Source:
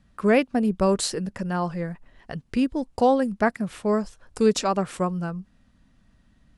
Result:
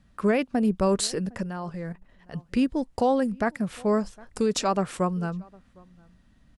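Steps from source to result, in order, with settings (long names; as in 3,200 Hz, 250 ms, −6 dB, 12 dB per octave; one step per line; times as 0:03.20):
slap from a distant wall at 130 metres, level −27 dB
0:01.43–0:02.34: output level in coarse steps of 11 dB
brickwall limiter −14.5 dBFS, peak gain reduction 6.5 dB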